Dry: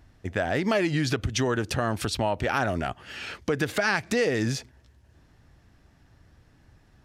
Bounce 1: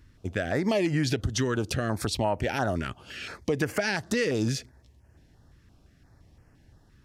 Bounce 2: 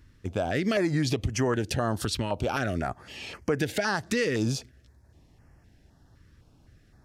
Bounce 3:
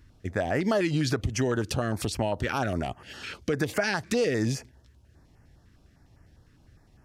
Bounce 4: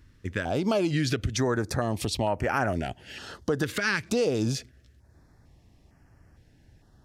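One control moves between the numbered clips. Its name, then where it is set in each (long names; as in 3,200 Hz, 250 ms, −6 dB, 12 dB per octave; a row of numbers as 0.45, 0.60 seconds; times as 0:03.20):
notch on a step sequencer, speed: 5.8, 3.9, 9.9, 2.2 Hertz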